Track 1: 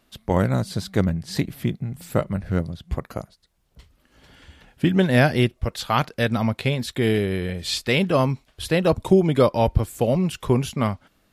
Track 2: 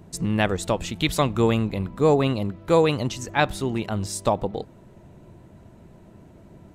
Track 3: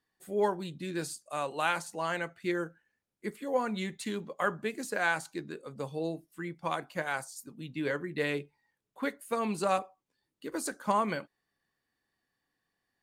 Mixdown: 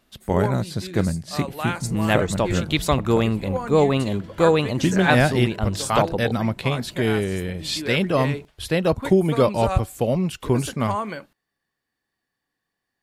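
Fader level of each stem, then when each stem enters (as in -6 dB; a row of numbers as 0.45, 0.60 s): -1.0, +1.0, +1.5 dB; 0.00, 1.70, 0.00 s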